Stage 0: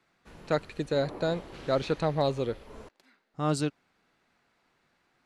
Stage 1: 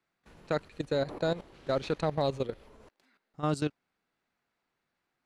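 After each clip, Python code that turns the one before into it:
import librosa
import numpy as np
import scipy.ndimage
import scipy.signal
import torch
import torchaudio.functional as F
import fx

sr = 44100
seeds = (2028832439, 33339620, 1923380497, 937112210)

y = fx.level_steps(x, sr, step_db=14)
y = y * 10.0 ** (1.0 / 20.0)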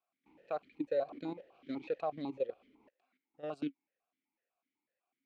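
y = fx.vowel_held(x, sr, hz=8.0)
y = y * 10.0 ** (3.0 / 20.0)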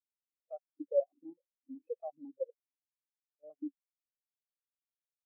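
y = fx.spectral_expand(x, sr, expansion=2.5)
y = y * 10.0 ** (3.0 / 20.0)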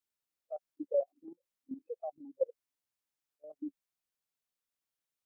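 y = fx.level_steps(x, sr, step_db=11)
y = y * 10.0 ** (7.0 / 20.0)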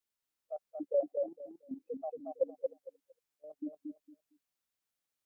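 y = fx.echo_feedback(x, sr, ms=229, feedback_pct=20, wet_db=-4)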